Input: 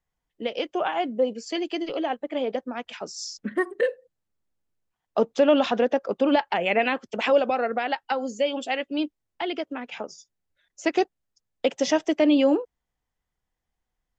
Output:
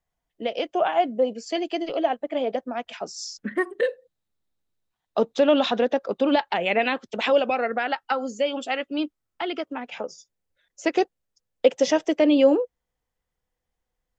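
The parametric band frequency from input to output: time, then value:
parametric band +8.5 dB 0.26 octaves
0:03.00 670 Hz
0:03.84 3,800 Hz
0:07.25 3,800 Hz
0:07.93 1,300 Hz
0:09.62 1,300 Hz
0:10.02 500 Hz

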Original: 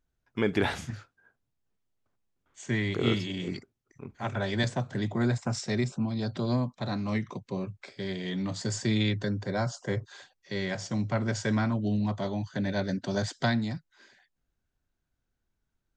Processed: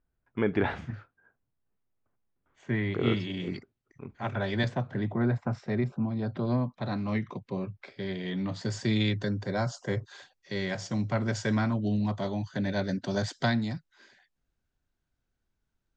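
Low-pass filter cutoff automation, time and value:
0:02.77 2,100 Hz
0:03.37 3,800 Hz
0:04.60 3,800 Hz
0:05.16 1,800 Hz
0:06.16 1,800 Hz
0:06.93 3,500 Hz
0:08.52 3,500 Hz
0:09.07 7,400 Hz

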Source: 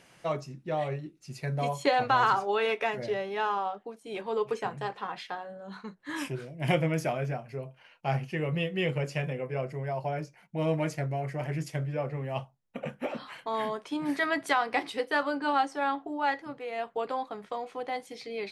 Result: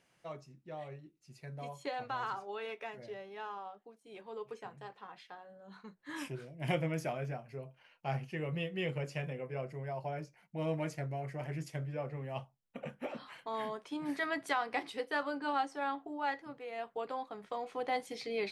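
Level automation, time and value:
0:05.26 −14 dB
0:06.18 −7 dB
0:17.28 −7 dB
0:17.95 0 dB

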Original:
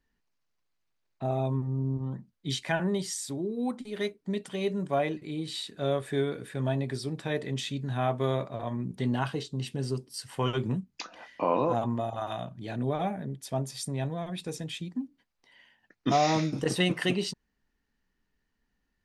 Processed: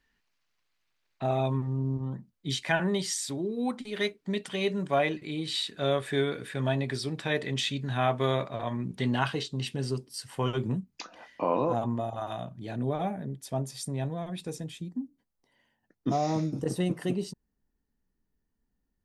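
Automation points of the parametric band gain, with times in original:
parametric band 2,600 Hz 2.7 octaves
0:01.66 +9 dB
0:02.33 −3 dB
0:02.83 +6.5 dB
0:09.54 +6.5 dB
0:10.50 −3 dB
0:14.47 −3 dB
0:15.01 −14 dB

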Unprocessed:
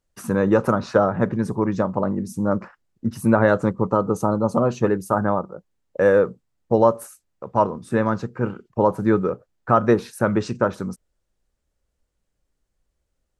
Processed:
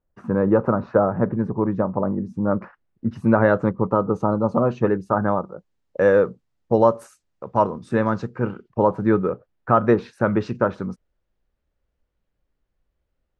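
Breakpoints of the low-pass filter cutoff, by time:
0:02.18 1,300 Hz
0:02.61 2,600 Hz
0:05.07 2,600 Hz
0:05.49 5,800 Hz
0:08.25 5,800 Hz
0:08.92 3,200 Hz

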